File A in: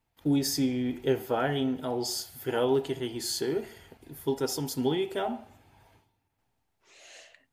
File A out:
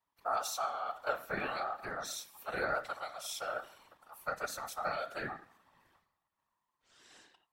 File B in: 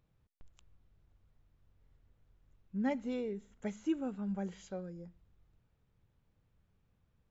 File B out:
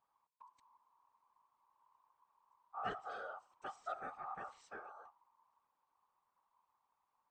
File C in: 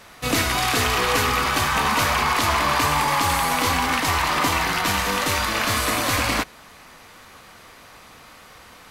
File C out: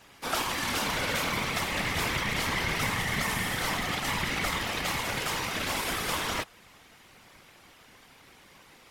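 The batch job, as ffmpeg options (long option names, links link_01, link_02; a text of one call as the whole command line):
ffmpeg -i in.wav -af "aeval=exprs='val(0)*sin(2*PI*1000*n/s)':channel_layout=same,afftfilt=real='hypot(re,im)*cos(2*PI*random(0))':imag='hypot(re,im)*sin(2*PI*random(1))':win_size=512:overlap=0.75" out.wav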